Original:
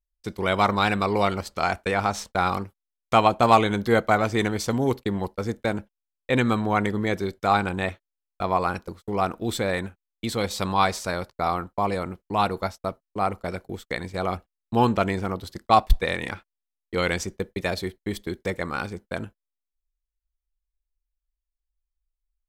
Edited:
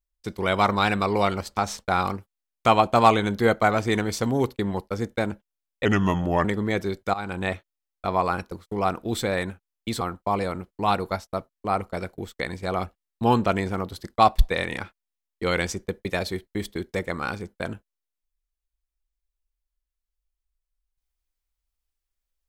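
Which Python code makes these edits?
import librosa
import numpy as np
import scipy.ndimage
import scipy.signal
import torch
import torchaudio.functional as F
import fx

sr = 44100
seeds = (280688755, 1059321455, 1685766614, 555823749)

y = fx.edit(x, sr, fx.cut(start_s=1.57, length_s=0.47),
    fx.speed_span(start_s=6.32, length_s=0.49, speed=0.82),
    fx.fade_in_from(start_s=7.5, length_s=0.31, floor_db=-19.0),
    fx.cut(start_s=10.37, length_s=1.15), tone=tone)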